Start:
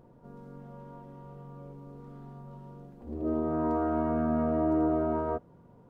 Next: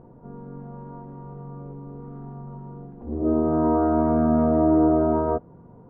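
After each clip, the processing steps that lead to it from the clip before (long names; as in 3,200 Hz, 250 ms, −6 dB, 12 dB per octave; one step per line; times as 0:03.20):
low-pass filter 1,200 Hz 12 dB per octave
notch filter 570 Hz, Q 13
level +8.5 dB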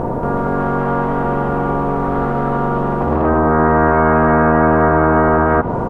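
loudspeakers that aren't time-aligned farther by 28 metres −11 dB, 80 metres 0 dB
treble cut that deepens with the level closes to 1,400 Hz, closed at −17 dBFS
every bin compressed towards the loudest bin 4 to 1
level +4.5 dB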